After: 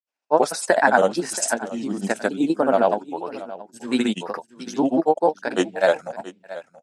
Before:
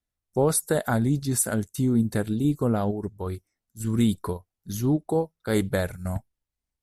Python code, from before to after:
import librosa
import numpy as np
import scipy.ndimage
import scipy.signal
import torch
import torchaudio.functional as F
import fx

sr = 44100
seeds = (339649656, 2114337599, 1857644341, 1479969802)

p1 = fx.band_shelf(x, sr, hz=980.0, db=10.0, octaves=1.7)
p2 = fx.level_steps(p1, sr, step_db=21)
p3 = p1 + (p2 * 10.0 ** (1.5 / 20.0))
p4 = fx.granulator(p3, sr, seeds[0], grain_ms=100.0, per_s=20.0, spray_ms=100.0, spread_st=3)
p5 = fx.cabinet(p4, sr, low_hz=250.0, low_slope=24, high_hz=8200.0, hz=(1200.0, 2600.0, 5300.0), db=(-9, 10, 6))
y = p5 + 10.0 ** (-16.5 / 20.0) * np.pad(p5, (int(678 * sr / 1000.0), 0))[:len(p5)]